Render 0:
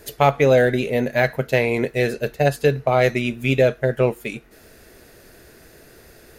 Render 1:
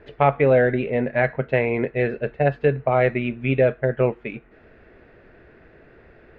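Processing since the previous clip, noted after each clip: low-pass 2.5 kHz 24 dB/octave; trim -1.5 dB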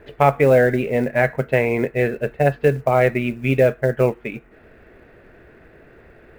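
short-mantissa float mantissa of 4-bit; trim +2.5 dB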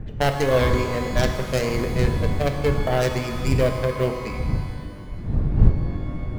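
tracing distortion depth 0.38 ms; wind noise 100 Hz -17 dBFS; pitch-shifted reverb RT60 1.8 s, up +12 st, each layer -8 dB, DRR 5.5 dB; trim -7.5 dB

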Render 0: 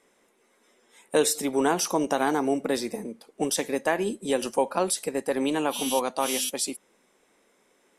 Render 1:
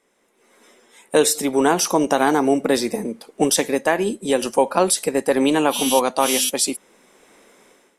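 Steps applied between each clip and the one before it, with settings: level rider gain up to 15.5 dB; trim -2 dB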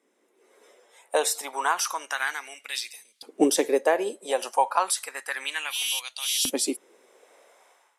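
LFO high-pass saw up 0.31 Hz 260–4000 Hz; trim -7 dB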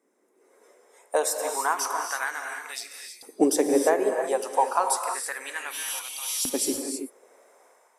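peaking EQ 3.2 kHz -11.5 dB 1 oct; gated-style reverb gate 350 ms rising, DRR 4 dB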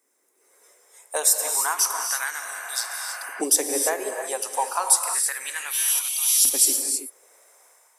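tilt EQ +4 dB/octave; spectral replace 2.47–3.39 s, 490–3200 Hz before; trim -2 dB

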